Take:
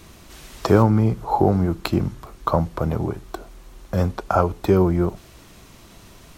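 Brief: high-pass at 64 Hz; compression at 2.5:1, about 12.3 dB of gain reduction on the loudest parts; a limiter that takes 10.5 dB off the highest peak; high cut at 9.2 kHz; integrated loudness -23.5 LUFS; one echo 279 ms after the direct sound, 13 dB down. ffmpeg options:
-af "highpass=64,lowpass=9200,acompressor=threshold=0.0316:ratio=2.5,alimiter=limit=0.0841:level=0:latency=1,aecho=1:1:279:0.224,volume=3.35"

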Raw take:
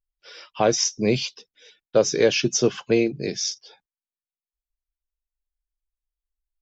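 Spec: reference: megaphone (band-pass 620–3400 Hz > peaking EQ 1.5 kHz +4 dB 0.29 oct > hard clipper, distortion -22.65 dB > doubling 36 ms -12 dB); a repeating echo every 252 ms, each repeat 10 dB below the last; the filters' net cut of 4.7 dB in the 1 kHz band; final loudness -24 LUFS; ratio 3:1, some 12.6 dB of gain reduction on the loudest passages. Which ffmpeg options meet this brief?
-filter_complex "[0:a]equalizer=f=1000:t=o:g=-5.5,acompressor=threshold=0.0251:ratio=3,highpass=620,lowpass=3400,equalizer=f=1500:t=o:w=0.29:g=4,aecho=1:1:252|504|756|1008:0.316|0.101|0.0324|0.0104,asoftclip=type=hard:threshold=0.0473,asplit=2[s0][s1];[s1]adelay=36,volume=0.251[s2];[s0][s2]amix=inputs=2:normalize=0,volume=6.31"

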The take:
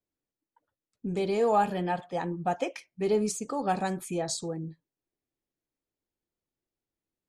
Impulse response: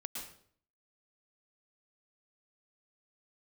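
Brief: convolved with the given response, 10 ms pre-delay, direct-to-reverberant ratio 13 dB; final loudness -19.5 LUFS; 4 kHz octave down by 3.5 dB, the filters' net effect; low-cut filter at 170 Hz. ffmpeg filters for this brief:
-filter_complex "[0:a]highpass=170,equalizer=f=4000:t=o:g=-4.5,asplit=2[s0][s1];[1:a]atrim=start_sample=2205,adelay=10[s2];[s1][s2]afir=irnorm=-1:irlink=0,volume=0.251[s3];[s0][s3]amix=inputs=2:normalize=0,volume=3.35"

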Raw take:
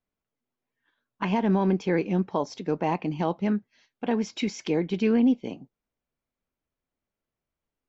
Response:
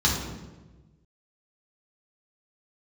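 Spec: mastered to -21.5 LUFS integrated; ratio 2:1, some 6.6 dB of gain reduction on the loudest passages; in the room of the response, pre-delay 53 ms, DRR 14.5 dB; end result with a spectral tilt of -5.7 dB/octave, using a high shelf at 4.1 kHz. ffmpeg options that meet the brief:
-filter_complex "[0:a]highshelf=f=4100:g=5,acompressor=threshold=0.0316:ratio=2,asplit=2[s0][s1];[1:a]atrim=start_sample=2205,adelay=53[s2];[s1][s2]afir=irnorm=-1:irlink=0,volume=0.0376[s3];[s0][s3]amix=inputs=2:normalize=0,volume=2.99"

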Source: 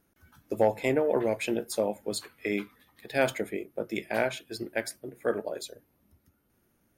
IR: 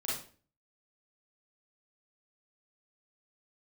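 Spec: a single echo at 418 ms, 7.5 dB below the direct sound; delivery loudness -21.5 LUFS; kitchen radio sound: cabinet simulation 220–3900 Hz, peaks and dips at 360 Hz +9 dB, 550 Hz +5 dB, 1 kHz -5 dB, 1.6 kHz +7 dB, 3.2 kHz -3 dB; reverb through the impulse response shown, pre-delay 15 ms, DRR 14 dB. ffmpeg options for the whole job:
-filter_complex "[0:a]aecho=1:1:418:0.422,asplit=2[s0][s1];[1:a]atrim=start_sample=2205,adelay=15[s2];[s1][s2]afir=irnorm=-1:irlink=0,volume=0.133[s3];[s0][s3]amix=inputs=2:normalize=0,highpass=220,equalizer=f=360:t=q:w=4:g=9,equalizer=f=550:t=q:w=4:g=5,equalizer=f=1000:t=q:w=4:g=-5,equalizer=f=1600:t=q:w=4:g=7,equalizer=f=3200:t=q:w=4:g=-3,lowpass=f=3900:w=0.5412,lowpass=f=3900:w=1.3066,volume=1.68"

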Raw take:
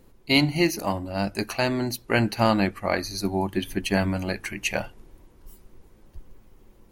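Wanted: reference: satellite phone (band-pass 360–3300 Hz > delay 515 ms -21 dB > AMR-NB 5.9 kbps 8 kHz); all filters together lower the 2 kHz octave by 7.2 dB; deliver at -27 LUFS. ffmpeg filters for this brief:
-af "highpass=360,lowpass=3300,equalizer=f=2000:t=o:g=-8.5,aecho=1:1:515:0.0891,volume=1.68" -ar 8000 -c:a libopencore_amrnb -b:a 5900

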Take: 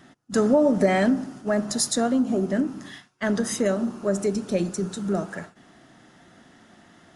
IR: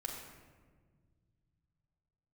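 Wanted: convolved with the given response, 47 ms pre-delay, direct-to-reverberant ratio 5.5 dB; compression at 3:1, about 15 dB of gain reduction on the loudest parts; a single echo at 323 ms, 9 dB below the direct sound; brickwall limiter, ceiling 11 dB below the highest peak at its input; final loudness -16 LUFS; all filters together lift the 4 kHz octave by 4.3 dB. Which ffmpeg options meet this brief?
-filter_complex "[0:a]equalizer=f=4000:t=o:g=5.5,acompressor=threshold=0.0158:ratio=3,alimiter=level_in=2.24:limit=0.0631:level=0:latency=1,volume=0.447,aecho=1:1:323:0.355,asplit=2[s0][s1];[1:a]atrim=start_sample=2205,adelay=47[s2];[s1][s2]afir=irnorm=-1:irlink=0,volume=0.531[s3];[s0][s3]amix=inputs=2:normalize=0,volume=13.3"

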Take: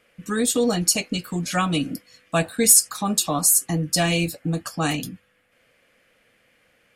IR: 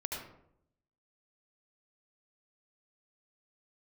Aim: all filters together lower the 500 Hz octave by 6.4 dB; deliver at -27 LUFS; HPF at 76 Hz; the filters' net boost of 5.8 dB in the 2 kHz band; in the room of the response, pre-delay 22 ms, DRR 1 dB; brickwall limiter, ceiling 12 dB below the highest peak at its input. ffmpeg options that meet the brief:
-filter_complex "[0:a]highpass=76,equalizer=f=500:t=o:g=-8.5,equalizer=f=2000:t=o:g=8,alimiter=limit=0.188:level=0:latency=1,asplit=2[s0][s1];[1:a]atrim=start_sample=2205,adelay=22[s2];[s1][s2]afir=irnorm=-1:irlink=0,volume=0.708[s3];[s0][s3]amix=inputs=2:normalize=0,volume=0.631"

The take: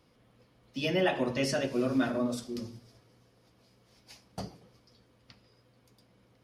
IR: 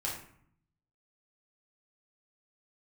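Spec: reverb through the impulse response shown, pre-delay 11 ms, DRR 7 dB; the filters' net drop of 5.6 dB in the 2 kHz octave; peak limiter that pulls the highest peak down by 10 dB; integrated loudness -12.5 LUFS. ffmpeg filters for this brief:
-filter_complex "[0:a]equalizer=f=2000:t=o:g=-7.5,alimiter=level_in=1.58:limit=0.0631:level=0:latency=1,volume=0.631,asplit=2[s0][s1];[1:a]atrim=start_sample=2205,adelay=11[s2];[s1][s2]afir=irnorm=-1:irlink=0,volume=0.299[s3];[s0][s3]amix=inputs=2:normalize=0,volume=16.8"

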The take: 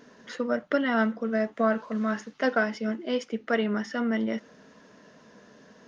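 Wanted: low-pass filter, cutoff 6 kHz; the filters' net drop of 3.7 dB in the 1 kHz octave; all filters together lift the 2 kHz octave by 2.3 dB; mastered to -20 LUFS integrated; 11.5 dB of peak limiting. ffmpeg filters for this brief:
-af "lowpass=6000,equalizer=f=1000:t=o:g=-9,equalizer=f=2000:t=o:g=7,volume=4.22,alimiter=limit=0.316:level=0:latency=1"

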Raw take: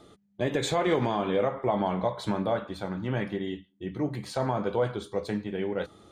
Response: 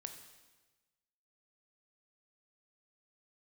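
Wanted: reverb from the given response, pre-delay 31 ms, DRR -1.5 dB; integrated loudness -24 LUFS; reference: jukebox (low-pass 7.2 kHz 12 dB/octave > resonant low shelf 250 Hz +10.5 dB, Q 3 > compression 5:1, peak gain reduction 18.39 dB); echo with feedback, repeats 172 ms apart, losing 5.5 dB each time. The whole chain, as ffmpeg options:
-filter_complex "[0:a]aecho=1:1:172|344|516|688|860|1032|1204:0.531|0.281|0.149|0.079|0.0419|0.0222|0.0118,asplit=2[s0][s1];[1:a]atrim=start_sample=2205,adelay=31[s2];[s1][s2]afir=irnorm=-1:irlink=0,volume=1.78[s3];[s0][s3]amix=inputs=2:normalize=0,lowpass=7200,lowshelf=f=250:t=q:w=3:g=10.5,acompressor=threshold=0.0447:ratio=5,volume=1.78"

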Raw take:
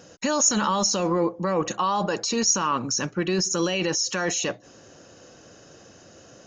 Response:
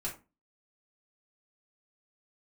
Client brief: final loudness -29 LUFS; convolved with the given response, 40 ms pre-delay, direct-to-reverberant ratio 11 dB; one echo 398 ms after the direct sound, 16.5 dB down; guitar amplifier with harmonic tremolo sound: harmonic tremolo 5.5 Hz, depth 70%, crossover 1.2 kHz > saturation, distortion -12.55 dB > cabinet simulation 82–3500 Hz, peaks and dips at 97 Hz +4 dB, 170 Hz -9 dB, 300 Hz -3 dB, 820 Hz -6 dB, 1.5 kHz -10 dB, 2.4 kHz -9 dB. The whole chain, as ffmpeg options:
-filter_complex "[0:a]aecho=1:1:398:0.15,asplit=2[s0][s1];[1:a]atrim=start_sample=2205,adelay=40[s2];[s1][s2]afir=irnorm=-1:irlink=0,volume=0.237[s3];[s0][s3]amix=inputs=2:normalize=0,acrossover=split=1200[s4][s5];[s4]aeval=exprs='val(0)*(1-0.7/2+0.7/2*cos(2*PI*5.5*n/s))':c=same[s6];[s5]aeval=exprs='val(0)*(1-0.7/2-0.7/2*cos(2*PI*5.5*n/s))':c=same[s7];[s6][s7]amix=inputs=2:normalize=0,asoftclip=threshold=0.0794,highpass=82,equalizer=f=97:t=q:w=4:g=4,equalizer=f=170:t=q:w=4:g=-9,equalizer=f=300:t=q:w=4:g=-3,equalizer=f=820:t=q:w=4:g=-6,equalizer=f=1500:t=q:w=4:g=-10,equalizer=f=2400:t=q:w=4:g=-9,lowpass=f=3500:w=0.5412,lowpass=f=3500:w=1.3066,volume=1.78"

